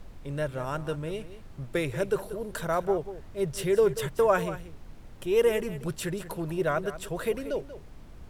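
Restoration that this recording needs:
noise reduction from a noise print 28 dB
echo removal 186 ms −13.5 dB

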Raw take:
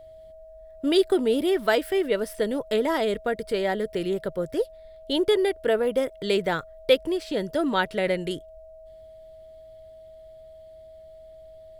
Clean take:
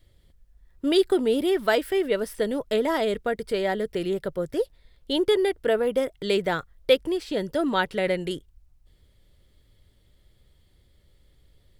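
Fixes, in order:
notch filter 640 Hz, Q 30

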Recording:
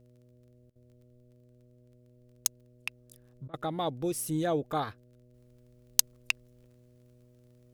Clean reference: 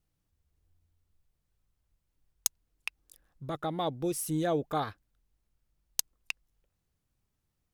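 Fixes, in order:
click removal
hum removal 122.7 Hz, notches 5
repair the gap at 0:00.70/0:03.48, 55 ms
level 0 dB, from 0:05.34 −7 dB

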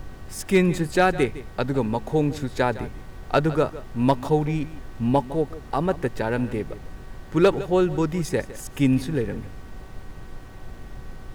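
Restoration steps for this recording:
clipped peaks rebuilt −9.5 dBFS
hum removal 378.5 Hz, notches 5
noise reduction from a noise print 28 dB
echo removal 158 ms −16.5 dB

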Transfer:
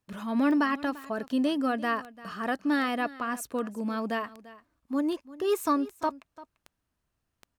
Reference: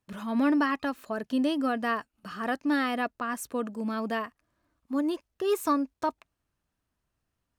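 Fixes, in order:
click removal
echo removal 343 ms −18.5 dB

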